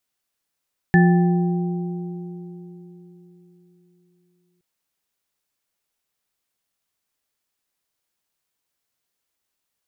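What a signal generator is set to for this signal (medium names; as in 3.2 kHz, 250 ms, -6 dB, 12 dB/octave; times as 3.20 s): sine partials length 3.67 s, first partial 174 Hz, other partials 359/784/1750 Hz, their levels -9/-11/-6.5 dB, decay 3.82 s, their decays 4.35/2.64/0.66 s, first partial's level -10.5 dB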